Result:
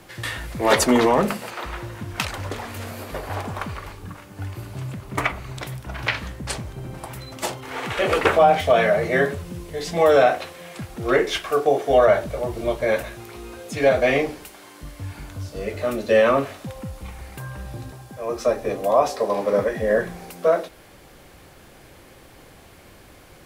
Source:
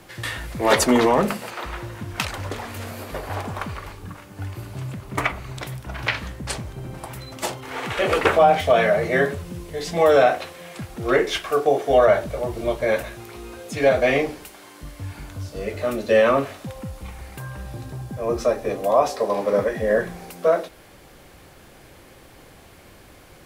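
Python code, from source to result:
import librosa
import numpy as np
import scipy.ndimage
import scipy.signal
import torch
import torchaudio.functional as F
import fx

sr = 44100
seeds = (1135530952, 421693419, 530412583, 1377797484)

y = fx.low_shelf(x, sr, hz=320.0, db=-11.0, at=(17.91, 18.46))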